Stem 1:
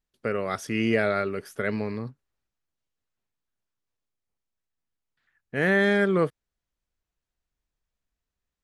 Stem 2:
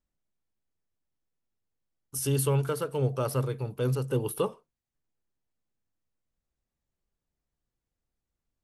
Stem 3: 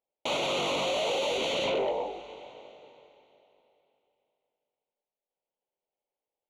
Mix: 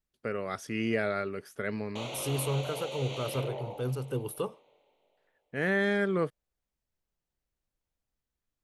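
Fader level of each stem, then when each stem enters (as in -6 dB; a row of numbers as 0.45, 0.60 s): -6.0, -5.0, -10.0 dB; 0.00, 0.00, 1.70 s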